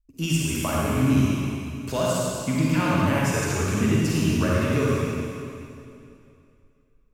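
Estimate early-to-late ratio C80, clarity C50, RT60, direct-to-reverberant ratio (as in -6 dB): -2.5 dB, -5.0 dB, 2.6 s, -6.0 dB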